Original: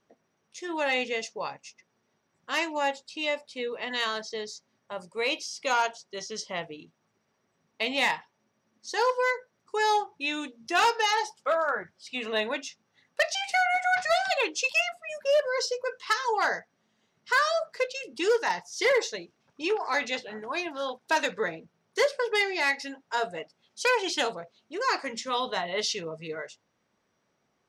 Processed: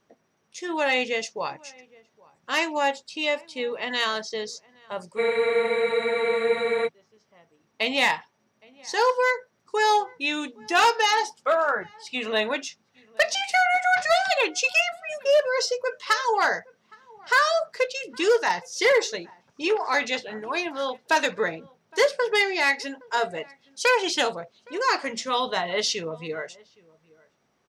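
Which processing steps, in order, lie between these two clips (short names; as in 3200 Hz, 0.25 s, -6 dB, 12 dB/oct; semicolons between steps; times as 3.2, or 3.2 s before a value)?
outdoor echo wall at 140 m, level -25 dB; spectral freeze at 5.2, 1.65 s; gain +4 dB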